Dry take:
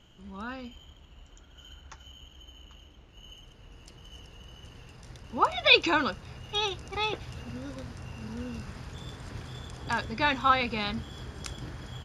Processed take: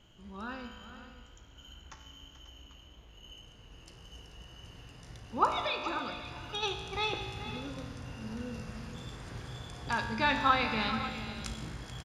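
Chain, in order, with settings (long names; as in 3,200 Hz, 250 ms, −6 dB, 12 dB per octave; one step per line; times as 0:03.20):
0:05.64–0:06.63: downward compressor, threshold −32 dBFS, peak gain reduction 17 dB
tuned comb filter 55 Hz, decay 1.8 s, harmonics all, mix 80%
on a send: multi-tap delay 435/540 ms −12.5/−14.5 dB
on the sum: level +9 dB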